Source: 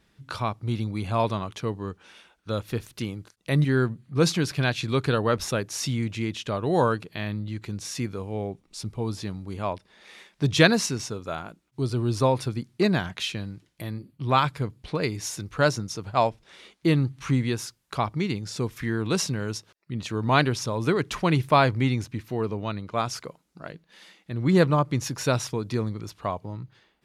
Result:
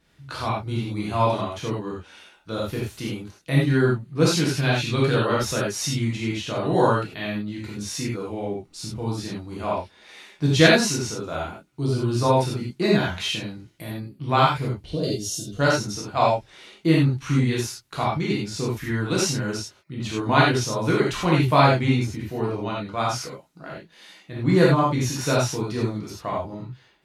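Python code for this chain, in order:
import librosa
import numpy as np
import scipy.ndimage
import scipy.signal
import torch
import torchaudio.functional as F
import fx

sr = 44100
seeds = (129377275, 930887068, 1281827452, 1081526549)

y = fx.spec_box(x, sr, start_s=14.86, length_s=0.74, low_hz=750.0, high_hz=2700.0, gain_db=-18)
y = fx.rev_gated(y, sr, seeds[0], gate_ms=120, shape='flat', drr_db=-5.5)
y = F.gain(torch.from_numpy(y), -3.0).numpy()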